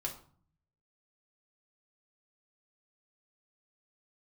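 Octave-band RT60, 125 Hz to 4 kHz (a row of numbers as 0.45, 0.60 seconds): 1.1, 0.80, 0.45, 0.50, 0.40, 0.35 seconds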